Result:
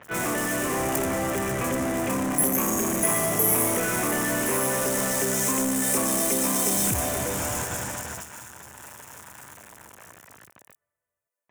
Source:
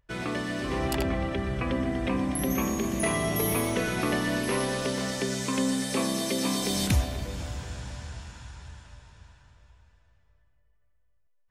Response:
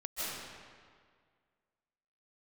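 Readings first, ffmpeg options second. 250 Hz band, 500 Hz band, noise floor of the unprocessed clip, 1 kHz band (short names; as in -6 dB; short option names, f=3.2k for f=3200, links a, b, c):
+0.5 dB, +3.0 dB, -65 dBFS, +5.0 dB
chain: -filter_complex "[0:a]aeval=exprs='val(0)+0.5*0.0168*sgn(val(0))':c=same,agate=range=-23dB:threshold=-32dB:ratio=16:detection=peak,highpass=f=81:w=0.5412,highpass=f=81:w=1.3066,highshelf=f=4.5k:g=-8.5,asplit=2[a][b];[b]acompressor=threshold=-41dB:ratio=6,volume=1dB[c];[a][c]amix=inputs=2:normalize=0,asoftclip=type=hard:threshold=-22dB,asplit=2[d][e];[e]highpass=f=720:p=1,volume=26dB,asoftclip=type=tanh:threshold=-22dB[f];[d][f]amix=inputs=2:normalize=0,lowpass=f=2.1k:p=1,volume=-6dB,aexciter=amount=13.8:drive=3.4:freq=6.4k,acrossover=split=3900[g][h];[h]adelay=30[i];[g][i]amix=inputs=2:normalize=0"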